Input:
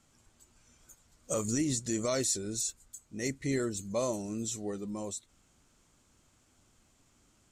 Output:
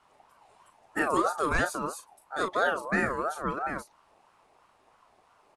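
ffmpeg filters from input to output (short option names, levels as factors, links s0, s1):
-filter_complex "[0:a]asetrate=59535,aresample=44100,lowpass=9200,aemphasis=mode=reproduction:type=75kf,asplit=2[s0][s1];[s1]adelay=36,volume=0.422[s2];[s0][s2]amix=inputs=2:normalize=0,aeval=exprs='val(0)*sin(2*PI*900*n/s+900*0.2/3*sin(2*PI*3*n/s))':c=same,volume=2.51"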